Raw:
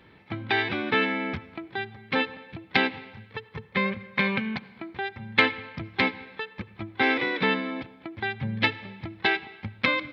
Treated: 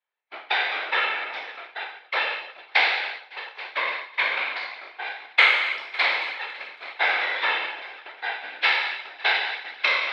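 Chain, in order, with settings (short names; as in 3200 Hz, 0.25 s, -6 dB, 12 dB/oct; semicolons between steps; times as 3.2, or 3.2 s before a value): spectral trails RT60 1.21 s; multi-head echo 0.277 s, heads all three, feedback 46%, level -18 dB; whisperiser; expander -26 dBFS; HPF 600 Hz 24 dB/oct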